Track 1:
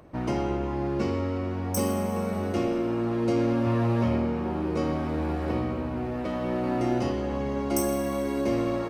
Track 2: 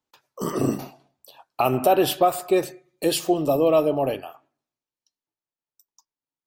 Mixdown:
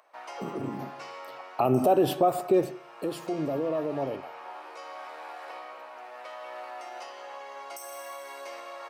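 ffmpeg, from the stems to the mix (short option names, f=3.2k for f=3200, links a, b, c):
-filter_complex "[0:a]highpass=f=700:w=0.5412,highpass=f=700:w=1.3066,alimiter=level_in=4.5dB:limit=-24dB:level=0:latency=1:release=138,volume=-4.5dB,acontrast=72,volume=-9.5dB[a];[1:a]highpass=110,tiltshelf=f=1.3k:g=8,alimiter=limit=-12dB:level=0:latency=1:release=114,volume=-1.5dB,afade=t=in:st=0.72:d=0.33:silence=0.266073,afade=t=out:st=2.61:d=0.47:silence=0.375837,asplit=2[b][c];[c]apad=whole_len=392158[d];[a][d]sidechaincompress=threshold=-28dB:ratio=5:attack=9.6:release=901[e];[e][b]amix=inputs=2:normalize=0"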